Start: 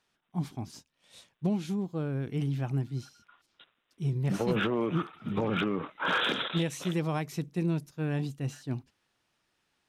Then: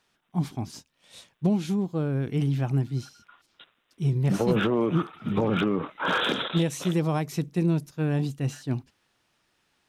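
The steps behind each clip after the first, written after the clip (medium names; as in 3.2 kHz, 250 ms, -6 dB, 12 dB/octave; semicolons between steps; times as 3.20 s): dynamic bell 2.2 kHz, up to -5 dB, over -44 dBFS, Q 0.79; trim +5.5 dB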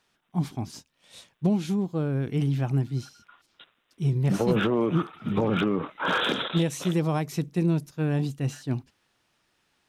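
no audible change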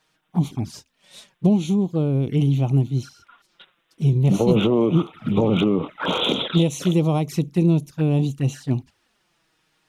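touch-sensitive flanger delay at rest 6.5 ms, full sweep at -24.5 dBFS; trim +6.5 dB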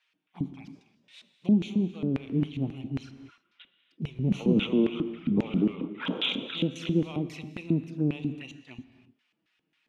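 LFO band-pass square 3.7 Hz 260–2500 Hz; gated-style reverb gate 340 ms flat, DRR 11.5 dB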